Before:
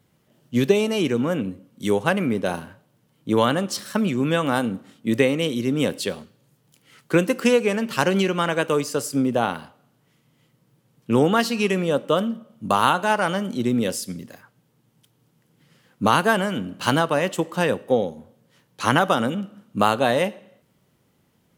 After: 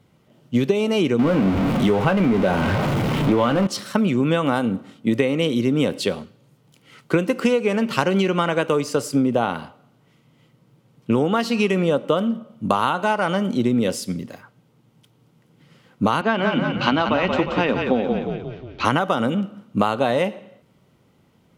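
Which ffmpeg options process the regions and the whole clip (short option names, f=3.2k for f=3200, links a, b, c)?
-filter_complex "[0:a]asettb=1/sr,asplit=3[a][b][c];[a]atrim=end=1.194[d];[b]atrim=start=1.19:end=3.67,asetpts=PTS-STARTPTS,afade=t=in:d=0.004:c=qsin,afade=t=out:st=2.476:d=0.004:c=qsin,aeval=exprs='val(0)+0.5*0.0944*sgn(val(0))':c=same,bass=f=250:g=1,treble=f=4k:g=-10,asplit=2[e][f];[f]adelay=21,volume=-11.5dB[g];[e][g]amix=inputs=2:normalize=0,atrim=end_sample=109368[h];[c]atrim=start=3.666[i];[d][h]acrossfade=d=0.004:c1=hsin:c2=qsin[j];[j][i]acrossfade=d=0.004:c1=qsin:c2=hsin,asettb=1/sr,asplit=3[k][l][m];[k]atrim=end=16.214[n];[l]atrim=start=16.21:end=18.85,asetpts=PTS-STARTPTS,afade=t=in:d=0.004:c=qsin,afade=t=out:st=2.636:d=0.004:c=qsin,highpass=220,equalizer=f=240:t=q:w=4:g=7,equalizer=f=490:t=q:w=4:g=-5,equalizer=f=2.4k:t=q:w=4:g=5,lowpass=f=5k:w=0.5412,lowpass=f=5k:w=1.3066,asplit=7[o][p][q][r][s][t][u];[p]adelay=178,afreqshift=-35,volume=-7dB[v];[q]adelay=356,afreqshift=-70,volume=-12.5dB[w];[r]adelay=534,afreqshift=-105,volume=-18dB[x];[s]adelay=712,afreqshift=-140,volume=-23.5dB[y];[t]adelay=890,afreqshift=-175,volume=-29.1dB[z];[u]adelay=1068,afreqshift=-210,volume=-34.6dB[aa];[o][v][w][x][y][z][aa]amix=inputs=7:normalize=0,atrim=end_sample=116424[ab];[m]atrim=start=18.846[ac];[n][ab]acrossfade=d=0.004:c1=hsin:c2=qsin[ad];[ad][ac]acrossfade=d=0.004:c1=qsin:c2=hsin,highshelf=f=6.2k:g=-11.5,bandreject=f=1.7k:w=9.9,acompressor=threshold=-21dB:ratio=6,volume=6dB"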